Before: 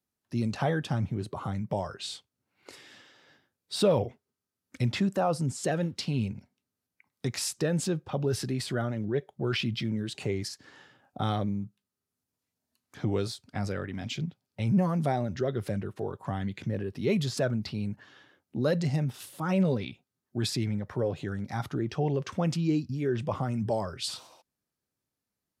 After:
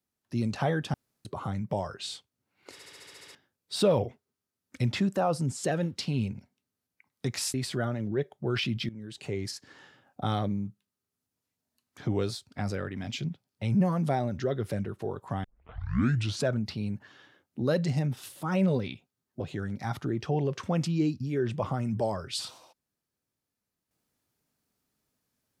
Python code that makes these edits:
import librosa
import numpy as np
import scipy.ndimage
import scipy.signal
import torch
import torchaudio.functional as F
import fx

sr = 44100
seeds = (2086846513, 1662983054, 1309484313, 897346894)

y = fx.edit(x, sr, fx.room_tone_fill(start_s=0.94, length_s=0.31),
    fx.stutter_over(start_s=2.72, slice_s=0.07, count=9),
    fx.cut(start_s=7.54, length_s=0.97),
    fx.fade_in_from(start_s=9.86, length_s=0.64, floor_db=-16.5),
    fx.tape_start(start_s=16.41, length_s=1.03),
    fx.cut(start_s=20.37, length_s=0.72), tone=tone)